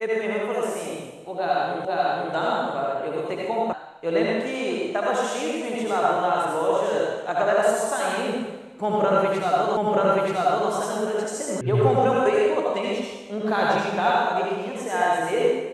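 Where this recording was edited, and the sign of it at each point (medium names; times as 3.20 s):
1.85 s: repeat of the last 0.49 s
3.73 s: sound stops dead
9.77 s: repeat of the last 0.93 s
11.61 s: sound stops dead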